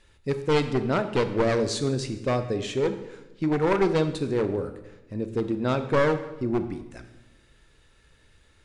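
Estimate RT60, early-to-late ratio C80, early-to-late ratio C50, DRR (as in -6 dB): 1.0 s, 13.0 dB, 11.0 dB, 9.0 dB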